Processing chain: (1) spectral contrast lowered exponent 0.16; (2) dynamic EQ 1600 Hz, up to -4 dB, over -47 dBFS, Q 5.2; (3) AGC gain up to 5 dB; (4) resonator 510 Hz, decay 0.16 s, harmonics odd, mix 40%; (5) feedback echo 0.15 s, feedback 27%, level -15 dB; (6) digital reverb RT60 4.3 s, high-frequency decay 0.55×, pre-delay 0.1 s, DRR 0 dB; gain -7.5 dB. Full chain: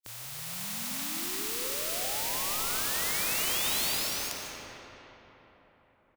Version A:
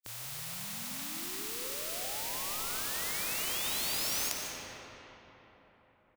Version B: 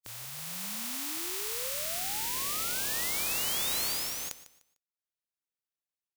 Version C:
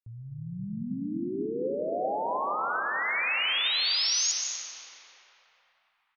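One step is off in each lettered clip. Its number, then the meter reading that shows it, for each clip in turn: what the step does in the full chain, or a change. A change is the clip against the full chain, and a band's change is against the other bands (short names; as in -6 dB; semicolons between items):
3, crest factor change +7.0 dB; 6, momentary loudness spread change -3 LU; 1, 8 kHz band -8.0 dB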